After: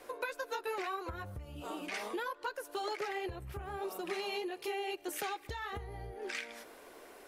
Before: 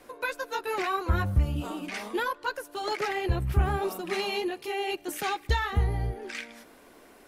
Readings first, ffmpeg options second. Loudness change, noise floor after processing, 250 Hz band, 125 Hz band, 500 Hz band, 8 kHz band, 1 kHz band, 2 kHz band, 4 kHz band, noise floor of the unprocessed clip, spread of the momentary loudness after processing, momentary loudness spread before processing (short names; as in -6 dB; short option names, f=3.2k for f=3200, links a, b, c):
-9.5 dB, -56 dBFS, -10.0 dB, -20.0 dB, -7.0 dB, -5.5 dB, -8.0 dB, -8.0 dB, -7.5 dB, -54 dBFS, 8 LU, 8 LU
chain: -af "acompressor=threshold=-35dB:ratio=12,lowshelf=f=310:t=q:w=1.5:g=-6.5"